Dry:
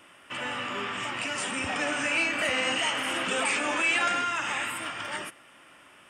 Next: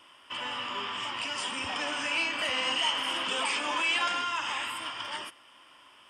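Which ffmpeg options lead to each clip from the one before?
ffmpeg -i in.wav -af "equalizer=frequency=160:width_type=o:width=0.33:gain=-10,equalizer=frequency=1000:width_type=o:width=0.33:gain=11,equalizer=frequency=3150:width_type=o:width=0.33:gain=11,equalizer=frequency=5000:width_type=o:width=0.33:gain=10,volume=-6.5dB" out.wav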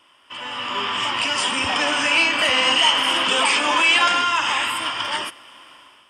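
ffmpeg -i in.wav -af "dynaudnorm=framelen=260:gausssize=5:maxgain=12dB" out.wav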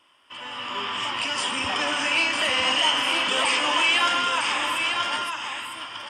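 ffmpeg -i in.wav -af "aecho=1:1:953:0.531,volume=-5dB" out.wav

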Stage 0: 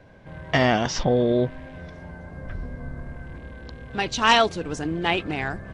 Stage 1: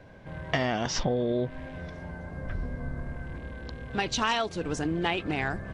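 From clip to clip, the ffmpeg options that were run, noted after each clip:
ffmpeg -i in.wav -af "acompressor=threshold=-24dB:ratio=6" out.wav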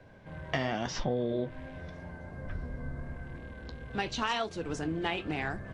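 ffmpeg -i in.wav -filter_complex "[0:a]acrossover=split=130|4500[link_01][link_02][link_03];[link_03]alimiter=level_in=9dB:limit=-24dB:level=0:latency=1:release=138,volume=-9dB[link_04];[link_01][link_02][link_04]amix=inputs=3:normalize=0,flanger=delay=8.1:depth=6.9:regen=-64:speed=0.88:shape=sinusoidal" out.wav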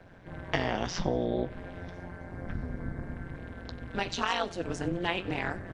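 ffmpeg -i in.wav -af "tremolo=f=180:d=0.947,aecho=1:1:93|186|279:0.0891|0.0365|0.015,volume=5.5dB" out.wav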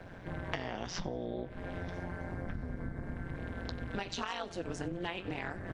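ffmpeg -i in.wav -af "acompressor=threshold=-39dB:ratio=6,volume=4.5dB" out.wav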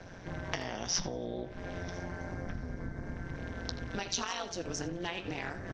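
ffmpeg -i in.wav -filter_complex "[0:a]lowpass=frequency=5900:width_type=q:width=5.4,asplit=2[link_01][link_02];[link_02]adelay=80,highpass=300,lowpass=3400,asoftclip=type=hard:threshold=-21.5dB,volume=-11dB[link_03];[link_01][link_03]amix=inputs=2:normalize=0" out.wav

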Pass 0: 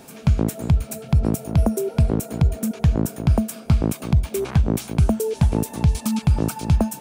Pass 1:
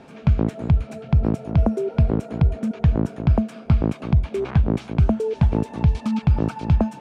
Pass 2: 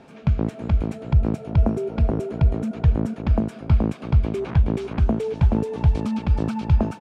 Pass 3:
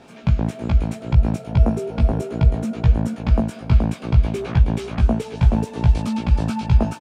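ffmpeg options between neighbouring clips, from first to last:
ffmpeg -i in.wav -af "lowpass=2900" out.wav
ffmpeg -i in.wav -af "aecho=1:1:426:0.668,volume=-2.5dB" out.wav
ffmpeg -i in.wav -filter_complex "[0:a]highshelf=frequency=3400:gain=8,asplit=2[link_01][link_02];[link_02]adelay=17,volume=-2.5dB[link_03];[link_01][link_03]amix=inputs=2:normalize=0" out.wav

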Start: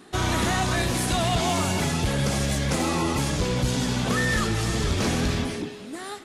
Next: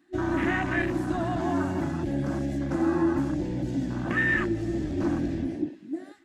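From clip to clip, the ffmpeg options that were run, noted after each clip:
ffmpeg -i in.wav -filter_complex "[0:a]afwtdn=0.0447,superequalizer=6b=3.55:7b=0.398:11b=2.51:12b=1.41:16b=0.562,acrossover=split=140|1500|6900[link_01][link_02][link_03][link_04];[link_01]alimiter=level_in=3.5dB:limit=-24dB:level=0:latency=1,volume=-3.5dB[link_05];[link_05][link_02][link_03][link_04]amix=inputs=4:normalize=0,volume=-5dB" out.wav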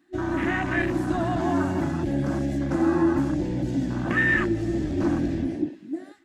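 ffmpeg -i in.wav -af "dynaudnorm=framelen=280:gausssize=5:maxgain=3dB" out.wav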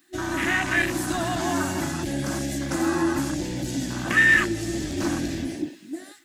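ffmpeg -i in.wav -af "crystalizer=i=9.5:c=0,volume=-3.5dB" out.wav

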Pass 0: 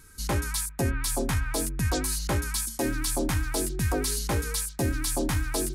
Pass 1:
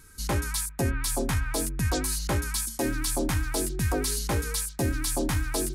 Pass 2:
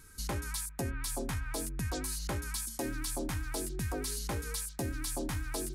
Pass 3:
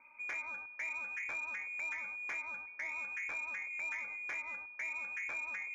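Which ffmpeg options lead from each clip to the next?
ffmpeg -i in.wav -af anull out.wav
ffmpeg -i in.wav -af "acompressor=threshold=-32dB:ratio=2.5,volume=-3dB" out.wav
ffmpeg -i in.wav -af "acrusher=bits=6:mode=log:mix=0:aa=0.000001,lowpass=frequency=2100:width_type=q:width=0.5098,lowpass=frequency=2100:width_type=q:width=0.6013,lowpass=frequency=2100:width_type=q:width=0.9,lowpass=frequency=2100:width_type=q:width=2.563,afreqshift=-2500,asoftclip=type=tanh:threshold=-29dB,volume=-3.5dB" out.wav

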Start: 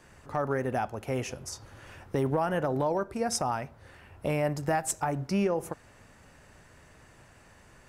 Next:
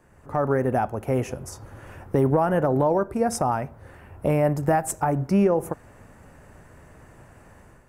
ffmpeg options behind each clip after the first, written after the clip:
ffmpeg -i in.wav -af "equalizer=frequency=4200:width=0.61:gain=-13.5,dynaudnorm=framelen=110:gausssize=5:maxgain=8dB" out.wav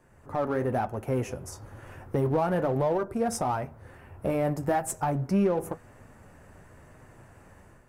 ffmpeg -i in.wav -filter_complex "[0:a]flanger=delay=7.7:depth=3.2:regen=-54:speed=1:shape=sinusoidal,asplit=2[link_01][link_02];[link_02]volume=30.5dB,asoftclip=hard,volume=-30.5dB,volume=-6dB[link_03];[link_01][link_03]amix=inputs=2:normalize=0,volume=-2.5dB" out.wav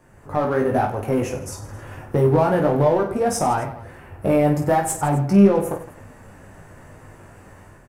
ffmpeg -i in.wav -af "aecho=1:1:20|50|95|162.5|263.8:0.631|0.398|0.251|0.158|0.1,volume=6dB" out.wav

